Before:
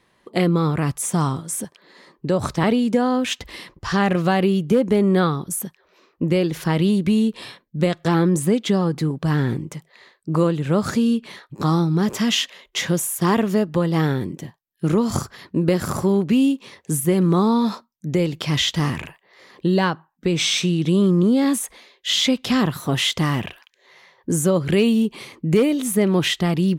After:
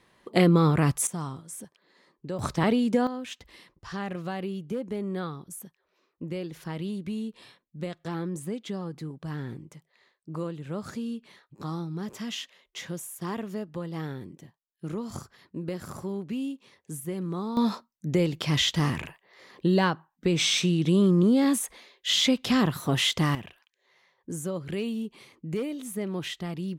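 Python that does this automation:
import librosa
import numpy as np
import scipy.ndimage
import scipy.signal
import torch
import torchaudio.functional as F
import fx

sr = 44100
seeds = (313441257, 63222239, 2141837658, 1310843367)

y = fx.gain(x, sr, db=fx.steps((0.0, -1.0), (1.07, -13.5), (2.39, -5.0), (3.07, -15.0), (17.57, -4.0), (23.35, -14.0)))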